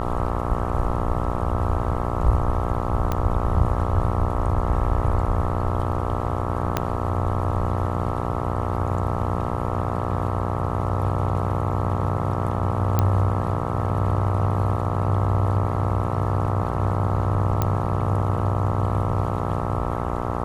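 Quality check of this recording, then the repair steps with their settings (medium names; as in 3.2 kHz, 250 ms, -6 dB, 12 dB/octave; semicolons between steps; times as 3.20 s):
buzz 60 Hz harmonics 22 -27 dBFS
3.12 s: pop -11 dBFS
6.77 s: pop -6 dBFS
12.99 s: pop -7 dBFS
17.62 s: pop -8 dBFS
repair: de-click; de-hum 60 Hz, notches 22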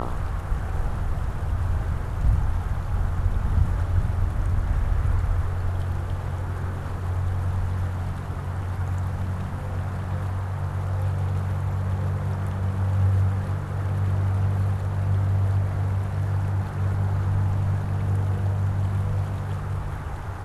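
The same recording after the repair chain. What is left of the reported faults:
6.77 s: pop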